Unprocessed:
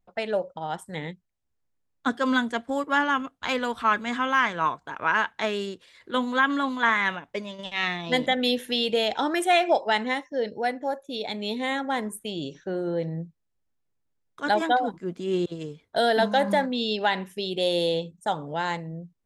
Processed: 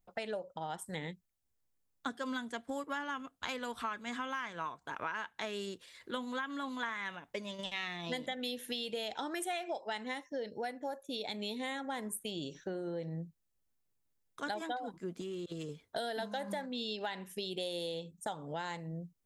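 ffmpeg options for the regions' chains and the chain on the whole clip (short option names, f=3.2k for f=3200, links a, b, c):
-filter_complex "[0:a]asettb=1/sr,asplit=3[a][b][c];[a]atrim=end=15.214[d];[b]atrim=start=15.21:end=15.69,asetpts=PTS-STARTPTS,afade=t=in:d=0.004:c=qsin,afade=t=out:st=0.476:d=0.004:c=qsin,asuperstop=centerf=850:order=12:qfactor=2.3,acompressor=threshold=-32dB:ratio=12:attack=3.2:release=140:knee=1:detection=peak,asoftclip=type=hard:threshold=-30dB[e];[c]atrim=start=15.686[f];[d][e]acrossfade=d=0.004:c1=hsin:c2=qsin[g];[g][f]acrossfade=d=0.004:c1=qsin:c2=hsin,highshelf=f=6.2k:g=10.5,acompressor=threshold=-32dB:ratio=6,volume=-4dB"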